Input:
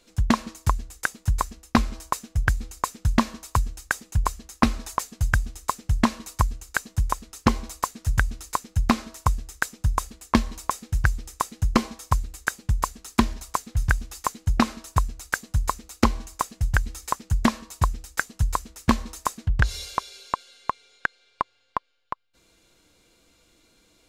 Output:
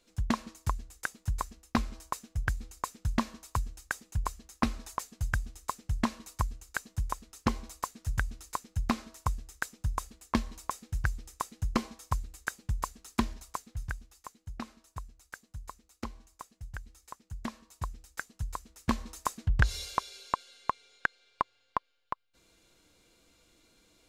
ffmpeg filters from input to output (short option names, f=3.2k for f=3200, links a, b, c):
-af "volume=7dB,afade=t=out:st=13.28:d=0.86:silence=0.281838,afade=t=in:st=17.22:d=0.89:silence=0.446684,afade=t=in:st=18.61:d=0.95:silence=0.354813"